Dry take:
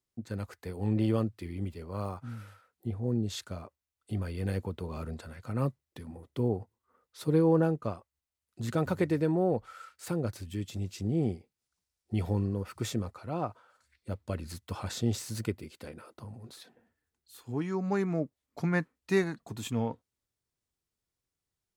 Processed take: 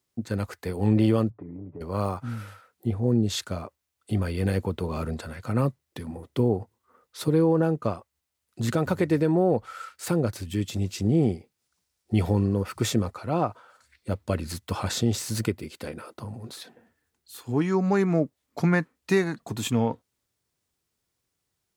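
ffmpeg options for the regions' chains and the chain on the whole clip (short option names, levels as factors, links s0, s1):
-filter_complex "[0:a]asettb=1/sr,asplit=3[s0][s1][s2];[s0]atrim=end=1.304[s3];[s1]atrim=start=1.3:end=1.81,asetpts=PTS-STARTPTS,afade=t=in:d=0.004:c=qsin,afade=t=out:st=0.506:d=0.004:c=qsin,lowpass=f=1100:w=0.5412,lowpass=f=1100:w=1.3066,aecho=1:1:6.9:0.83,atrim=end_sample=22491,acompressor=threshold=0.00708:ratio=8:attack=3.2:release=140:knee=1:detection=peak[s4];[s2]atrim=start=1.806[s5];[s3][s4]acrossfade=d=0.004:c1=hsin:c2=qsin[s6];[s6][s5]acrossfade=d=0.004:c1=qsin:c2=hsin,highpass=f=77:p=1,alimiter=limit=0.0891:level=0:latency=1:release=259,volume=2.82"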